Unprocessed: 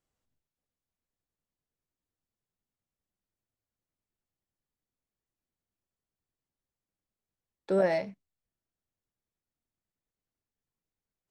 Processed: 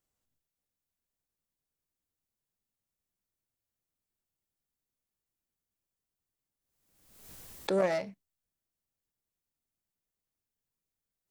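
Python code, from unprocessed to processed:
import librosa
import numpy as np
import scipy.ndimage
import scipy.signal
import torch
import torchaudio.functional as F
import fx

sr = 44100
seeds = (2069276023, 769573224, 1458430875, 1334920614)

y = fx.self_delay(x, sr, depth_ms=0.11)
y = fx.high_shelf(y, sr, hz=6700.0, db=9.0)
y = fx.pre_swell(y, sr, db_per_s=55.0)
y = F.gain(torch.from_numpy(y), -2.5).numpy()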